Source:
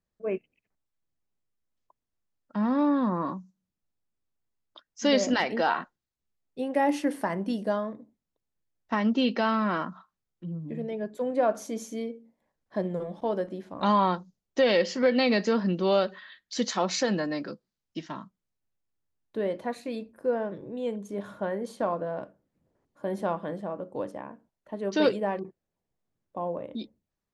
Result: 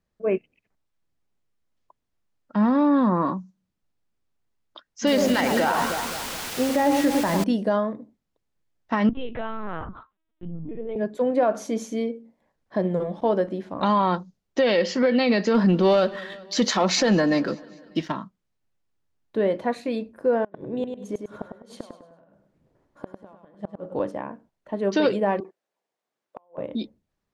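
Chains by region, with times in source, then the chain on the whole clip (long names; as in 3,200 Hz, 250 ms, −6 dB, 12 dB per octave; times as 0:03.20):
0:05.07–0:07.44: parametric band 130 Hz +7.5 dB 0.8 octaves + bit-depth reduction 6 bits, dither triangular + delay that swaps between a low-pass and a high-pass 104 ms, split 1,400 Hz, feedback 69%, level −6 dB
0:09.09–0:10.96: downward compressor 2.5 to 1, threshold −40 dBFS + parametric band 510 Hz +3.5 dB 1.1 octaves + linear-prediction vocoder at 8 kHz pitch kept
0:15.54–0:18.12: leveller curve on the samples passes 1 + repeating echo 197 ms, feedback 59%, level −24 dB
0:20.44–0:24.00: gate with flip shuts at −24 dBFS, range −29 dB + repeating echo 101 ms, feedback 33%, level −6 dB
0:25.40–0:26.58: high-pass filter 510 Hz + downward compressor 12 to 1, threshold −36 dBFS + gate with flip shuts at −33 dBFS, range −29 dB
whole clip: high-shelf EQ 7,900 Hz −11.5 dB; brickwall limiter −19 dBFS; level +7 dB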